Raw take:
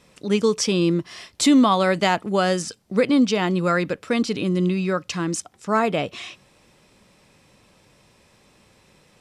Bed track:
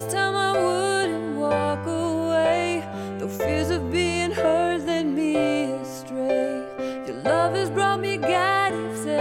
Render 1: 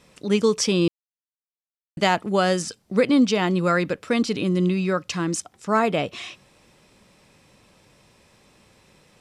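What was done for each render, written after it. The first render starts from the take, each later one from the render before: 0.88–1.97 mute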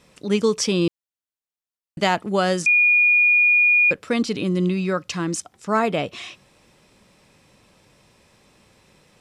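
2.66–3.91 bleep 2440 Hz -12.5 dBFS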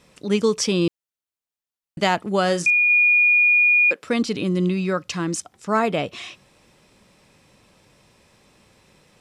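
2.41–2.9 doubler 40 ms -13 dB; 3.63–4.03 Bessel high-pass 360 Hz, order 4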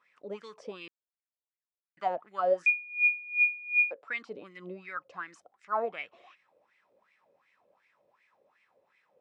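wah 2.7 Hz 510–2200 Hz, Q 6.5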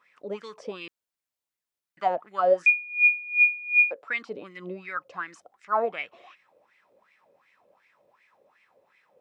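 gain +5.5 dB

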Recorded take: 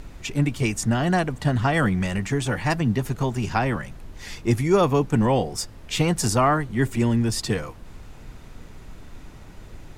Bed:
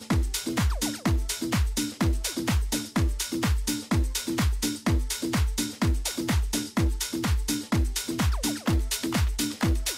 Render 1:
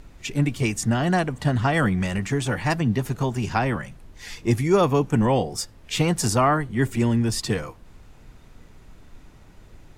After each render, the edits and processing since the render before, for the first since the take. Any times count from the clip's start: noise print and reduce 6 dB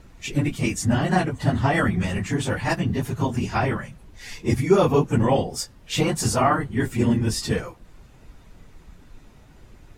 phase scrambler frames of 50 ms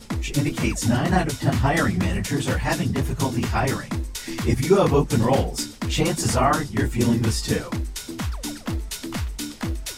add bed -3 dB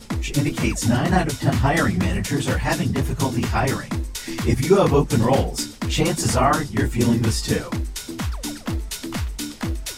gain +1.5 dB

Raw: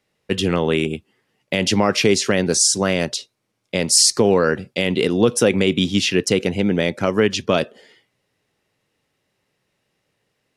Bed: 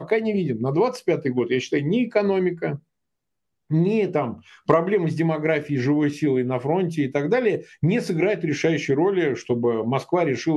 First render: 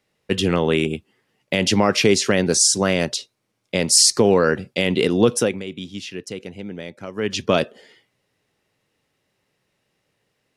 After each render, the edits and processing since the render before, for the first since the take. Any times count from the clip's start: 5.32–7.43 dip -14 dB, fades 0.28 s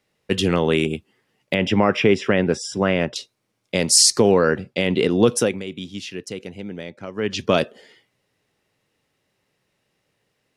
1.54–3.16 polynomial smoothing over 25 samples; 4.31–5.23 high shelf 5500 Hz -10.5 dB; 6.83–7.39 air absorption 59 m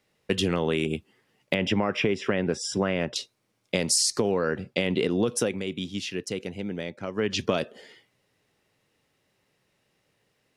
compressor 6:1, threshold -21 dBFS, peak gain reduction 11 dB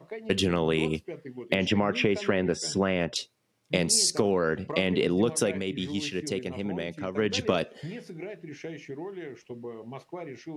add bed -18 dB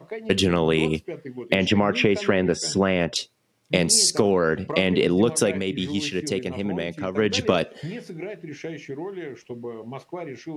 gain +5 dB

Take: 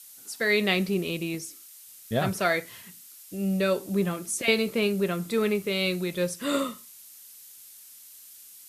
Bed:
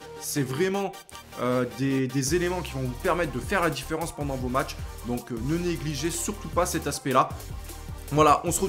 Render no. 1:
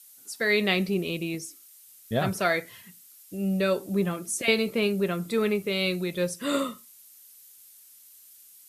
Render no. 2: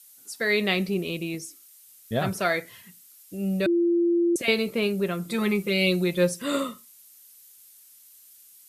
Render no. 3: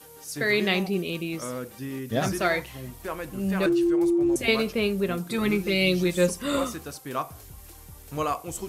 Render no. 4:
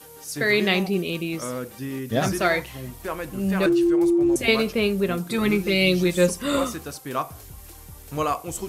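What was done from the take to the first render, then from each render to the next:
denoiser 6 dB, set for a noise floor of -49 dBFS
3.66–4.36 bleep 343 Hz -18.5 dBFS; 5.29–6.42 comb 5.7 ms, depth 94%
add bed -9 dB
gain +3 dB

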